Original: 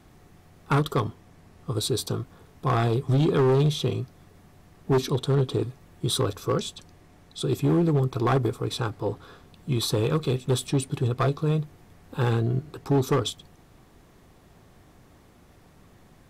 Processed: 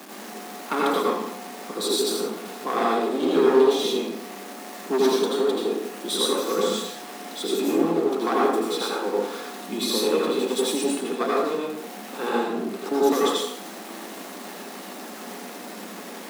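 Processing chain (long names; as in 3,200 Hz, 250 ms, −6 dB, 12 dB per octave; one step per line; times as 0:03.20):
converter with a step at zero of −33.5 dBFS
Butterworth high-pass 190 Hz 96 dB per octave
convolution reverb, pre-delay 73 ms, DRR −4.5 dB
level −2.5 dB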